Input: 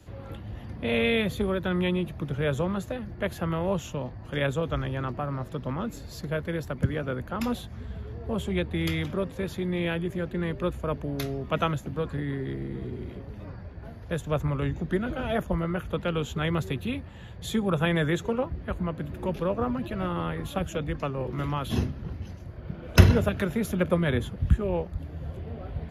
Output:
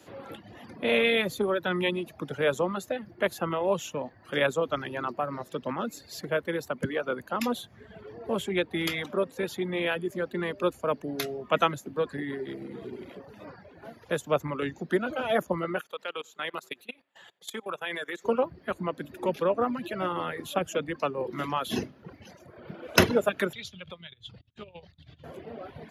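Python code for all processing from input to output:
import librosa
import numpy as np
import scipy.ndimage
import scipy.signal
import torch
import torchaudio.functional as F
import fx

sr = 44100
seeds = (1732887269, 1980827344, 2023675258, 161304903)

y = fx.chain(x, sr, fx.highpass(hz=900.0, slope=6),
    fx.level_steps(step_db=18),
    fx.echo_single(ms=91, db=-21.0), at=(15.81, 18.25))
y = fx.chain(y, sr, fx.curve_eq(hz=(120.0, 250.0, 1700.0, 3700.0, 11000.0), db=(0, -24, -15, 2, -26)),
    fx.over_compress(threshold_db=-41.0, ratio=-1.0), at=(23.53, 25.24))
y = fx.dereverb_blind(y, sr, rt60_s=1.1)
y = scipy.signal.sosfilt(scipy.signal.butter(2, 280.0, 'highpass', fs=sr, output='sos'), y)
y = y * 10.0 ** (4.0 / 20.0)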